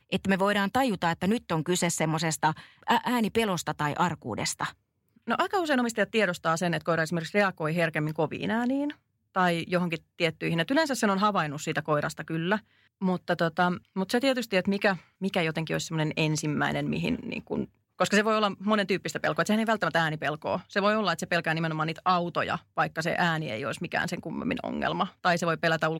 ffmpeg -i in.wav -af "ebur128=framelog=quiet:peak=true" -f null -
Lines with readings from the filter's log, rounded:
Integrated loudness:
  I:         -27.6 LUFS
  Threshold: -37.7 LUFS
Loudness range:
  LRA:         1.9 LU
  Threshold: -47.8 LUFS
  LRA low:   -28.7 LUFS
  LRA high:  -26.9 LUFS
True peak:
  Peak:      -10.9 dBFS